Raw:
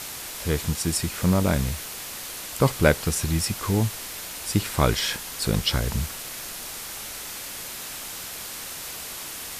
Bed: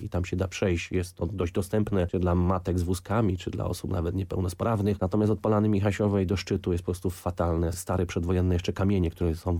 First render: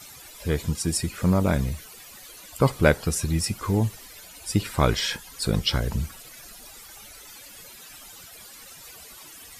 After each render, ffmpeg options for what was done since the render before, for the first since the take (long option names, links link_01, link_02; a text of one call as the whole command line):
ffmpeg -i in.wav -af "afftdn=noise_reduction=15:noise_floor=-36" out.wav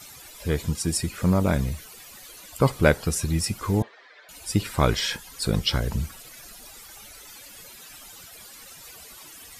ffmpeg -i in.wav -filter_complex "[0:a]asettb=1/sr,asplit=3[link_01][link_02][link_03];[link_01]atrim=end=3.824[link_04];[link_02]atrim=start=3.82:end=4.29,asetpts=PTS-STARTPTS,afade=type=in:duration=0.004:curve=qsin,afade=type=out:start_time=0.466:duration=0.004:curve=qsin,highpass=frequency=430:width=0.5412,highpass=frequency=430:width=1.3066,equalizer=frequency=880:width_type=q:width=4:gain=-3,equalizer=frequency=1700:width_type=q:width=4:gain=6,equalizer=frequency=2800:width_type=q:width=4:gain=-9,lowpass=frequency=3400:width=0.5412,lowpass=frequency=3400:width=1.3066[link_05];[link_03]atrim=start=4.286[link_06];[link_04][link_05]acrossfade=duration=0.004:curve1=hsin:curve2=qsin[link_07];[link_07][link_06]acrossfade=duration=0.004:curve1=qsin:curve2=hsin" out.wav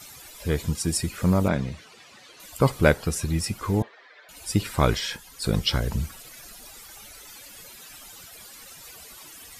ffmpeg -i in.wav -filter_complex "[0:a]asettb=1/sr,asplit=3[link_01][link_02][link_03];[link_01]atrim=end=1.484[link_04];[link_02]atrim=start=1.48:end=2.4,asetpts=PTS-STARTPTS,afade=type=in:duration=0.004:curve=qsin,afade=type=out:start_time=0.916:duration=0.004:curve=qsin,highpass=120,lowpass=4600[link_05];[link_03]atrim=start=2.396[link_06];[link_04][link_05]acrossfade=duration=0.004:curve1=hsin:curve2=qsin[link_07];[link_07][link_06]acrossfade=duration=0.004:curve1=qsin:curve2=hsin,asettb=1/sr,asplit=3[link_08][link_09][link_10];[link_08]atrim=end=2.934[link_11];[link_09]atrim=start=2.93:end=4.37,asetpts=PTS-STARTPTS,afade=type=in:duration=0.004:curve=qsin,afade=type=out:start_time=1.436:duration=0.004:curve=qsin,bass=frequency=250:gain=-1,treble=frequency=4000:gain=-3[link_12];[link_10]atrim=start=4.366[link_13];[link_11][link_12]acrossfade=duration=0.004:curve1=hsin:curve2=qsin[link_14];[link_14][link_13]acrossfade=duration=0.004:curve1=qsin:curve2=hsin,asplit=3[link_15][link_16][link_17];[link_15]atrim=end=4.982[link_18];[link_16]atrim=start=4.978:end=5.442,asetpts=PTS-STARTPTS,volume=-3.5dB[link_19];[link_17]atrim=start=5.438[link_20];[link_18][link_19]acrossfade=duration=0.004:curve1=hsin:curve2=hsin[link_21];[link_21][link_20]acrossfade=duration=0.004:curve1=hsin:curve2=hsin" out.wav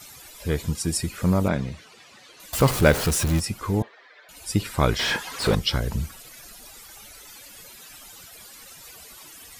ffmpeg -i in.wav -filter_complex "[0:a]asettb=1/sr,asplit=3[link_01][link_02][link_03];[link_01]atrim=end=2.534[link_04];[link_02]atrim=start=2.53:end=3.4,asetpts=PTS-STARTPTS,afade=type=in:duration=0.004:curve=qsin,afade=type=out:start_time=0.866:duration=0.004:curve=qsin,aeval=exprs='val(0)+0.5*0.0708*sgn(val(0))':channel_layout=same[link_05];[link_03]atrim=start=3.396[link_06];[link_04][link_05]acrossfade=duration=0.004:curve1=hsin:curve2=qsin[link_07];[link_07][link_06]acrossfade=duration=0.004:curve1=qsin:curve2=hsin,asettb=1/sr,asplit=3[link_08][link_09][link_10];[link_08]atrim=end=4.994[link_11];[link_09]atrim=start=4.99:end=5.55,asetpts=PTS-STARTPTS,afade=type=in:duration=0.004:curve=qsin,afade=type=out:start_time=0.556:duration=0.004:curve=qsin,asplit=2[link_12][link_13];[link_13]highpass=frequency=720:poles=1,volume=28dB,asoftclip=type=tanh:threshold=-10.5dB[link_14];[link_12][link_14]amix=inputs=2:normalize=0,lowpass=frequency=1600:poles=1,volume=-6dB[link_15];[link_10]atrim=start=5.546[link_16];[link_11][link_15]acrossfade=duration=0.004:curve1=hsin:curve2=qsin[link_17];[link_17][link_16]acrossfade=duration=0.004:curve1=qsin:curve2=hsin" out.wav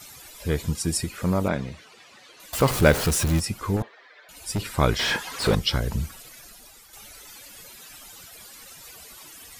ffmpeg -i in.wav -filter_complex "[0:a]asettb=1/sr,asplit=3[link_01][link_02][link_03];[link_01]atrim=end=1.044[link_04];[link_02]atrim=start=1.04:end=2.71,asetpts=PTS-STARTPTS,afade=type=in:duration=0.004:curve=qsin,afade=type=out:start_time=1.666:duration=0.004:curve=qsin,bass=frequency=250:gain=-4,treble=frequency=4000:gain=-2[link_05];[link_03]atrim=start=2.706[link_06];[link_04][link_05]acrossfade=duration=0.004:curve1=hsin:curve2=qsin[link_07];[link_07][link_06]acrossfade=duration=0.004:curve1=qsin:curve2=hsin,asettb=1/sr,asplit=3[link_08][link_09][link_10];[link_08]atrim=end=3.764[link_11];[link_09]atrim=start=3.76:end=4.74,asetpts=PTS-STARTPTS,afade=type=in:duration=0.004:curve=qsin,afade=type=out:start_time=0.976:duration=0.004:curve=qsin,asoftclip=type=hard:threshold=-21.5dB[link_12];[link_10]atrim=start=4.736[link_13];[link_11][link_12]acrossfade=duration=0.004:curve1=hsin:curve2=qsin[link_14];[link_14][link_13]acrossfade=duration=0.004:curve1=qsin:curve2=hsin,asplit=2[link_15][link_16];[link_15]atrim=end=6.93,asetpts=PTS-STARTPTS,afade=type=out:start_time=6.2:duration=0.73:silence=0.446684[link_17];[link_16]atrim=start=6.93,asetpts=PTS-STARTPTS,afade=type=in:duration=0.004:curve=hsin:silence=0.446684[link_18];[link_17][link_18]concat=n=2:v=0:a=1" out.wav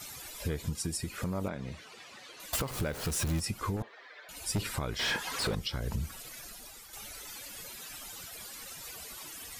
ffmpeg -i in.wav -af "acompressor=threshold=-26dB:ratio=6,alimiter=limit=-23.5dB:level=0:latency=1:release=407" out.wav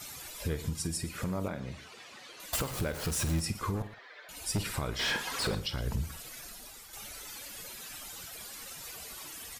ffmpeg -i in.wav -filter_complex "[0:a]asplit=2[link_01][link_02];[link_02]adelay=49,volume=-13dB[link_03];[link_01][link_03]amix=inputs=2:normalize=0,aecho=1:1:116:0.15" out.wav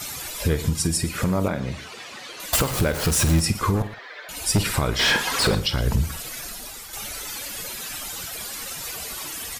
ffmpeg -i in.wav -af "volume=11.5dB" out.wav